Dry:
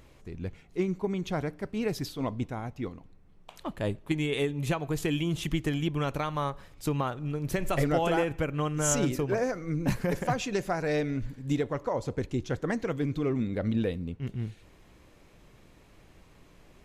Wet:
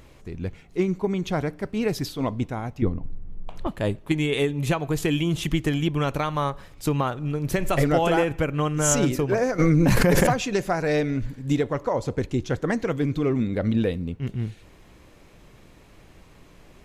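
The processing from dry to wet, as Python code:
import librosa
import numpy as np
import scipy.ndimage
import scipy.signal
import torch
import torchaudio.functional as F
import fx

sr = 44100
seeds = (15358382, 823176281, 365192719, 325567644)

y = fx.tilt_eq(x, sr, slope=-3.5, at=(2.82, 3.67))
y = fx.env_flatten(y, sr, amount_pct=100, at=(9.58, 10.28), fade=0.02)
y = y * librosa.db_to_amplitude(5.5)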